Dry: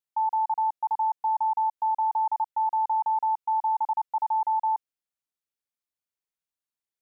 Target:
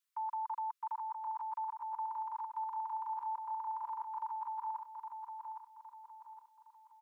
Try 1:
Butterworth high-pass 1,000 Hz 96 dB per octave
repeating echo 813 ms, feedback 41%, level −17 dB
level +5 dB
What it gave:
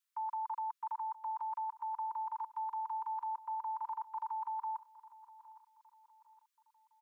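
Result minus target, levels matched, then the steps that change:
echo-to-direct −11 dB
change: repeating echo 813 ms, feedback 41%, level −6 dB

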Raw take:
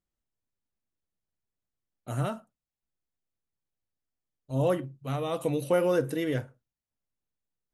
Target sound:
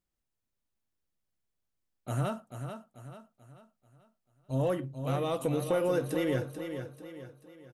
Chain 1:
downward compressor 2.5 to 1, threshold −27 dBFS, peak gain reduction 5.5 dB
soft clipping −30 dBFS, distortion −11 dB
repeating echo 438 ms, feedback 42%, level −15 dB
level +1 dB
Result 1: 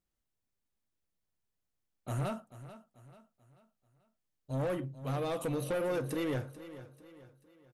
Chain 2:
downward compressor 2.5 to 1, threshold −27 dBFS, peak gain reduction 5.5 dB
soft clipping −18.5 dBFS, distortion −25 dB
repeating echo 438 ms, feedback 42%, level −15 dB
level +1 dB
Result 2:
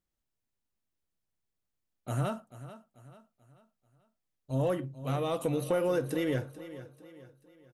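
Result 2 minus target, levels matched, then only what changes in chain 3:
echo-to-direct −6.5 dB
change: repeating echo 438 ms, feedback 42%, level −8.5 dB

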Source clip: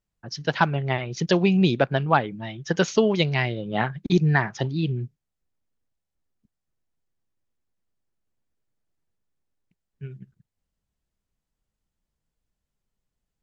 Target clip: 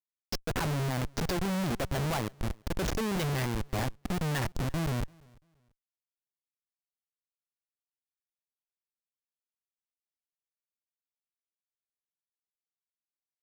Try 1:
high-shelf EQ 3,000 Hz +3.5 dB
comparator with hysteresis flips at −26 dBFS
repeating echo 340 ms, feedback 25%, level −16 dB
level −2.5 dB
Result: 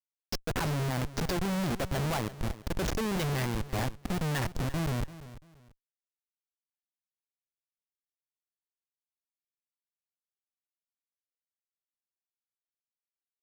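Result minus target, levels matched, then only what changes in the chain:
echo-to-direct +11.5 dB
change: repeating echo 340 ms, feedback 25%, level −27.5 dB

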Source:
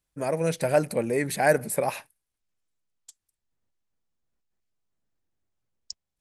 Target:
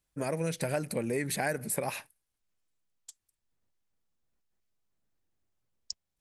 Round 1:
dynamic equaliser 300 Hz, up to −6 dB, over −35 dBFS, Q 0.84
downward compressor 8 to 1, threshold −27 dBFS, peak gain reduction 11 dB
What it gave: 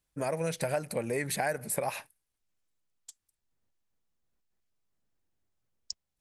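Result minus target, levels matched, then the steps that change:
250 Hz band −3.0 dB
change: dynamic equaliser 680 Hz, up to −6 dB, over −35 dBFS, Q 0.84

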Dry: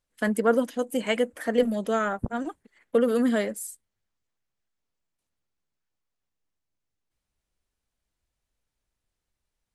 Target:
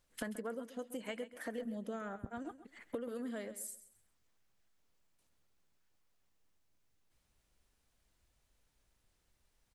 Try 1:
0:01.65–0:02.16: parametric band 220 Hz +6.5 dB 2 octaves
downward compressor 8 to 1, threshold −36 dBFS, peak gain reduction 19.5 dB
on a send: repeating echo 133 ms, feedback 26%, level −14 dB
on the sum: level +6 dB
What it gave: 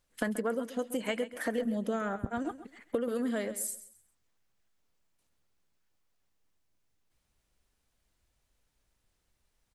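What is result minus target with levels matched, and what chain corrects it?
downward compressor: peak gain reduction −9.5 dB
0:01.65–0:02.16: parametric band 220 Hz +6.5 dB 2 octaves
downward compressor 8 to 1, threshold −47 dBFS, peak gain reduction 29 dB
on a send: repeating echo 133 ms, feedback 26%, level −14 dB
on the sum: level +6 dB

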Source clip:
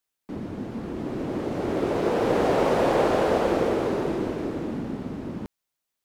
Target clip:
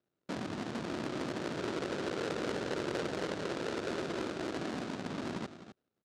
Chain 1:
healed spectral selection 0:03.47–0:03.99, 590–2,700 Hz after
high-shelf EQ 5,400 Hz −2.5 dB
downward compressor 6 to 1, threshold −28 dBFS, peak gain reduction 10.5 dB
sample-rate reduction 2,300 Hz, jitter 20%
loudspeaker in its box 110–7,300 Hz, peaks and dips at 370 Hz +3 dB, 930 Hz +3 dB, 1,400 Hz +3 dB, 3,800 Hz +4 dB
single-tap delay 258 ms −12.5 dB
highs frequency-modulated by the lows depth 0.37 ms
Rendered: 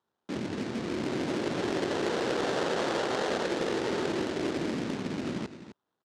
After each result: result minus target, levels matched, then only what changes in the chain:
sample-rate reduction: distortion −12 dB; downward compressor: peak gain reduction −6 dB
change: sample-rate reduction 960 Hz, jitter 20%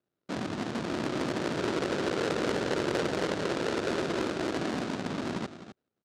downward compressor: peak gain reduction −6 dB
change: downward compressor 6 to 1, threshold −35.5 dBFS, peak gain reduction 17 dB

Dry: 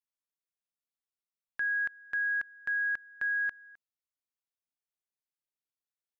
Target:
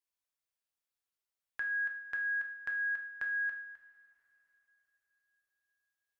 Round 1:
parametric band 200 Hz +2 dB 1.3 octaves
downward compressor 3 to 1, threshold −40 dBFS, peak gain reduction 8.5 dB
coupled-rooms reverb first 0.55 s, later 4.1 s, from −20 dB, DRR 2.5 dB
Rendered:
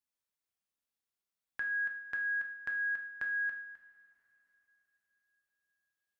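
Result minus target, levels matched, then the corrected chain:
250 Hz band +5.5 dB
parametric band 200 Hz −7.5 dB 1.3 octaves
downward compressor 3 to 1, threshold −40 dBFS, peak gain reduction 8 dB
coupled-rooms reverb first 0.55 s, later 4.1 s, from −20 dB, DRR 2.5 dB

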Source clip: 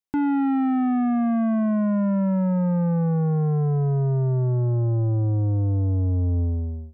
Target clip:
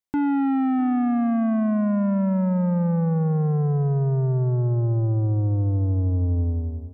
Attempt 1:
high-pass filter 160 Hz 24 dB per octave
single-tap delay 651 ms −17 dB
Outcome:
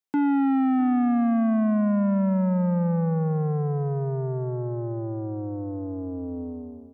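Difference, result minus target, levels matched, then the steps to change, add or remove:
125 Hz band −4.0 dB
remove: high-pass filter 160 Hz 24 dB per octave

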